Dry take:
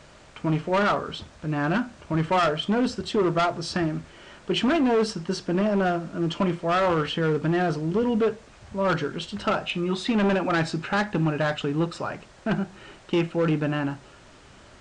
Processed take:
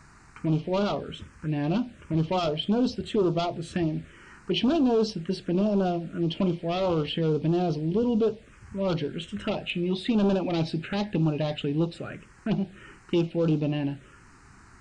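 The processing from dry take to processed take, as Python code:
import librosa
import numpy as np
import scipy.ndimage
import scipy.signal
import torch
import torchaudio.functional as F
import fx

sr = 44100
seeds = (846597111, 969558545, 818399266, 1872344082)

y = fx.dynamic_eq(x, sr, hz=1200.0, q=0.82, threshold_db=-38.0, ratio=4.0, max_db=-4)
y = fx.env_phaser(y, sr, low_hz=540.0, high_hz=2000.0, full_db=-19.5)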